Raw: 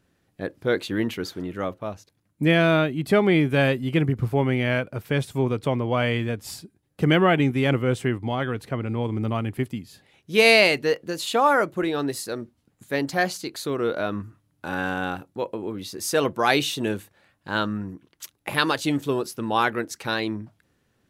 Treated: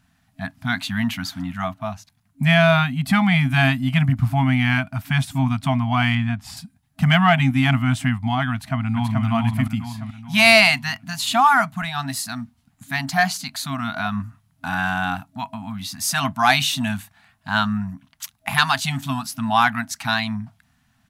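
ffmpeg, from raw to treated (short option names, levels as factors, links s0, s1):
-filter_complex "[0:a]asettb=1/sr,asplit=3[s0][s1][s2];[s0]atrim=end=6.154[s3];[s1]atrim=start=6.15:end=6.57,asetpts=PTS-STARTPTS,afade=t=in:d=0.004:c=qsin,afade=t=out:st=0.416:d=0.004:c=qsin,lowpass=f=2600:p=1[s4];[s2]atrim=start=6.566[s5];[s3][s4]acrossfade=d=0.004:c1=hsin:c2=qsin[s6];[s6][s5]acrossfade=d=0.004:c1=qsin:c2=hsin,asplit=2[s7][s8];[s8]afade=t=in:st=8.53:d=0.01,afade=t=out:st=9.24:d=0.01,aecho=0:1:430|860|1290|1720|2150|2580:0.749894|0.337452|0.151854|0.0683341|0.0307503|0.0138377[s9];[s7][s9]amix=inputs=2:normalize=0,afftfilt=real='re*(1-between(b*sr/4096,270,640))':imag='im*(1-between(b*sr/4096,270,640))':win_size=4096:overlap=0.75,acontrast=49"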